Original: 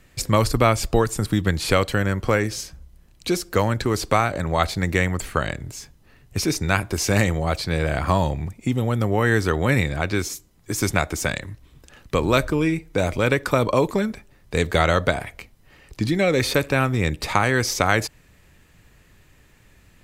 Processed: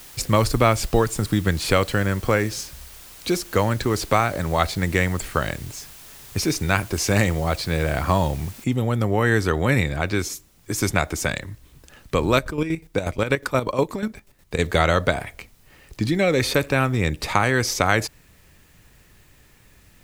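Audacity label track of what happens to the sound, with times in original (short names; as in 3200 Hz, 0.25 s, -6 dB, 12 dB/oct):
8.640000	8.640000	noise floor step -44 dB -61 dB
12.340000	14.590000	chopper 8.3 Hz, depth 65%, duty 40%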